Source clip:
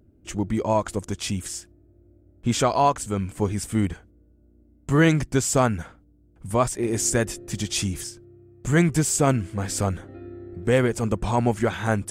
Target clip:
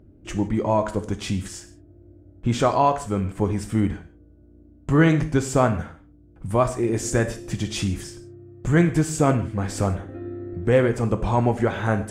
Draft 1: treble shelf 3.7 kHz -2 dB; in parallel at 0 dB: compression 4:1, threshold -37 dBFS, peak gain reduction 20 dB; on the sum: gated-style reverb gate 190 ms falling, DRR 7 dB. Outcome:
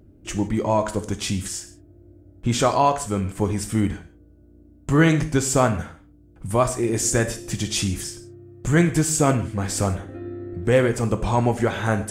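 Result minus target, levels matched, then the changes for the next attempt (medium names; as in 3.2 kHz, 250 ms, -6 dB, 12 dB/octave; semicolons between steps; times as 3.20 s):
8 kHz band +7.5 dB
change: treble shelf 3.7 kHz -12.5 dB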